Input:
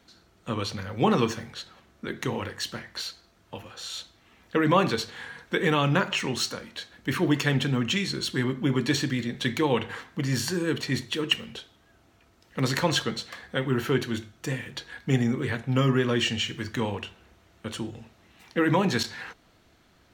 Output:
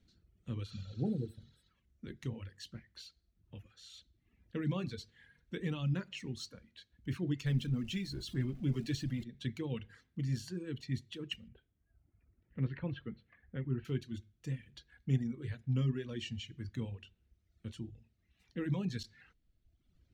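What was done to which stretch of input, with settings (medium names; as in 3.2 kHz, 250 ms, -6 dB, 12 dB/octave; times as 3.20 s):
0.69–1.63 s: spectral replace 840–7800 Hz
7.46–9.24 s: jump at every zero crossing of -30 dBFS
11.48–13.85 s: low-pass 2.4 kHz 24 dB/octave
whole clip: treble shelf 7.6 kHz -12 dB; reverb removal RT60 1.2 s; amplifier tone stack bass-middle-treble 10-0-1; trim +7.5 dB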